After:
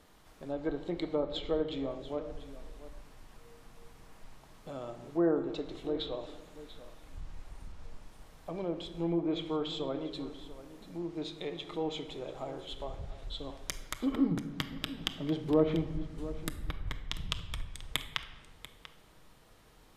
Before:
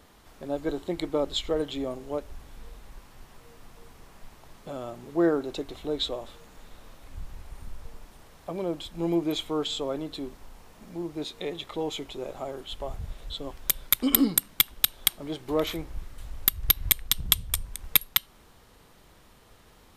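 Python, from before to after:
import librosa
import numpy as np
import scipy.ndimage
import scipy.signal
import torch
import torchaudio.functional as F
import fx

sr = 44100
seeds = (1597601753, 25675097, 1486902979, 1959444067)

y = fx.env_lowpass_down(x, sr, base_hz=1300.0, full_db=-21.5)
y = fx.peak_eq(y, sr, hz=180.0, db=11.0, octaves=1.9, at=(14.31, 16.54))
y = y + 10.0 ** (-15.5 / 20.0) * np.pad(y, (int(690 * sr / 1000.0), 0))[:len(y)]
y = fx.room_shoebox(y, sr, seeds[0], volume_m3=810.0, walls='mixed', distance_m=0.56)
y = y * librosa.db_to_amplitude(-5.5)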